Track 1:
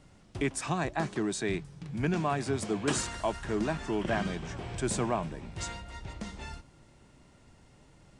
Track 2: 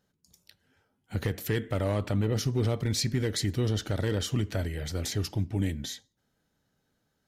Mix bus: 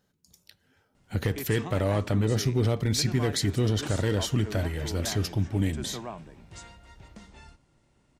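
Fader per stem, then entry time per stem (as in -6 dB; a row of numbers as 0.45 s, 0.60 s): -8.0 dB, +2.5 dB; 0.95 s, 0.00 s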